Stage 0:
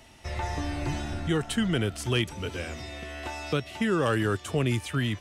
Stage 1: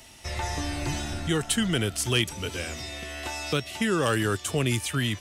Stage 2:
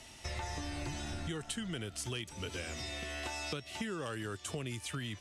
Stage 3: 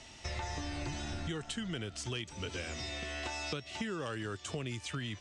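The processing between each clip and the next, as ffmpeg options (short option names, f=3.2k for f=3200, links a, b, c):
-af "highshelf=f=3.6k:g=11.5"
-af "lowpass=10k,acompressor=threshold=-33dB:ratio=10,volume=-3dB"
-af "lowpass=f=7.6k:w=0.5412,lowpass=f=7.6k:w=1.3066,volume=1dB"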